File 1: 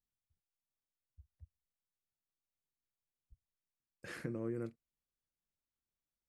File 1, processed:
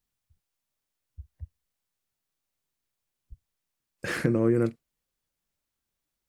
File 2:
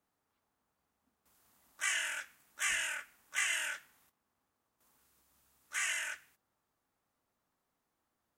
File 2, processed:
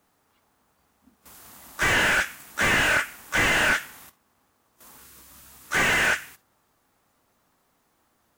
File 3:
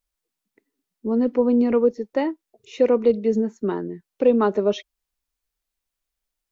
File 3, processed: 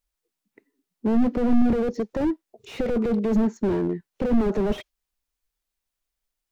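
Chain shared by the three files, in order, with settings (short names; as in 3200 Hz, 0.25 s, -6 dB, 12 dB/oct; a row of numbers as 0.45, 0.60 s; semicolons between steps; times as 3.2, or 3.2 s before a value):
spectral noise reduction 7 dB; slew limiter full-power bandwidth 16 Hz; normalise peaks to -9 dBFS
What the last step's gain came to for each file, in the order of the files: +16.5, +22.5, +6.0 dB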